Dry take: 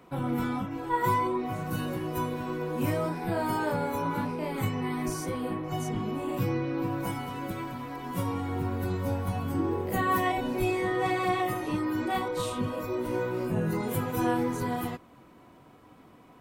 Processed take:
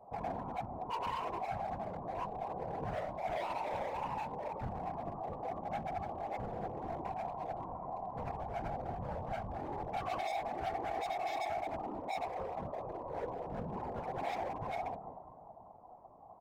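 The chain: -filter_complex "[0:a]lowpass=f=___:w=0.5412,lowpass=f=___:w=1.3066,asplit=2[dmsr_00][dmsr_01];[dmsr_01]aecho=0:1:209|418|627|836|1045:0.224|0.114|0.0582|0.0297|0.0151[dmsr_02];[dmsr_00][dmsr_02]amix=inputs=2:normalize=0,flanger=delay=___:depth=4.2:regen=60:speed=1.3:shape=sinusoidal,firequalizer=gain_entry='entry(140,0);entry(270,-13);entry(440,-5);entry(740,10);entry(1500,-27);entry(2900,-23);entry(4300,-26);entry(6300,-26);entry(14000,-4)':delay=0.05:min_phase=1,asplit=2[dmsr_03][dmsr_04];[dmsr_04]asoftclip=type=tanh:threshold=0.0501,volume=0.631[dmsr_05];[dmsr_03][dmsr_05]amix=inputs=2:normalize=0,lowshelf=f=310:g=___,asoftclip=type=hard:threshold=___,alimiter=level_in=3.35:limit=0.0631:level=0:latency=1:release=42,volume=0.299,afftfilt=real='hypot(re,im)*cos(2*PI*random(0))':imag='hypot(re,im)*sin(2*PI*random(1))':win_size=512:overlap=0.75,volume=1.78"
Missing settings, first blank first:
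1.9k, 1.9k, 8.7, -7, 0.0282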